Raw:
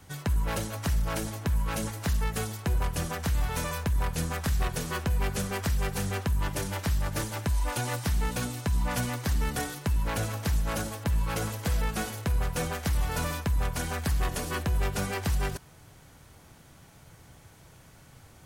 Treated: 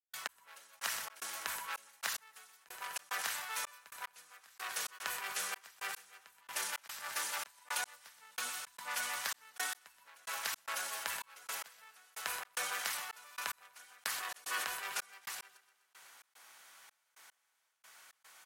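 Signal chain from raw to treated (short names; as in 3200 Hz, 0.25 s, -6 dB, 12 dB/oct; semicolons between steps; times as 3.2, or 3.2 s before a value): feedback echo 0.125 s, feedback 57%, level -12 dB; step gate ".x....xx.xxxx." 111 bpm -60 dB; compressor, threshold -29 dBFS, peak gain reduction 7 dB; Chebyshev high-pass 1300 Hz, order 2; sustainer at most 46 dB/s; gain +1 dB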